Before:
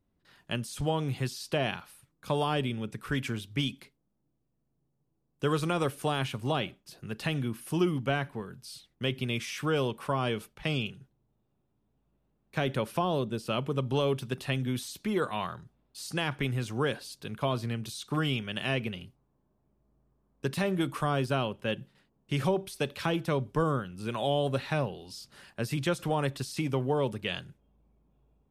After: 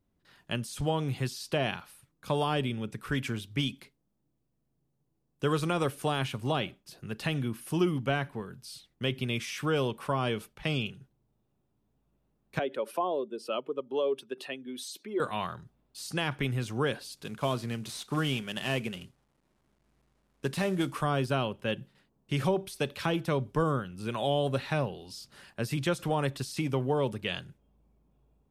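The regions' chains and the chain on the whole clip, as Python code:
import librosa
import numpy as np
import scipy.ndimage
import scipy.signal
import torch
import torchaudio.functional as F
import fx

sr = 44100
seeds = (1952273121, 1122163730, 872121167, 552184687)

y = fx.chain(x, sr, fx.spec_expand(power=1.5),
    fx.highpass(hz=310.0, slope=24), at=(12.59, 15.2))
y = fx.chain(y, sr, fx.cvsd(bps=64000),
    fx.peak_eq(hz=100.0, db=-9.5, octaves=0.29), at=(17.17, 20.94))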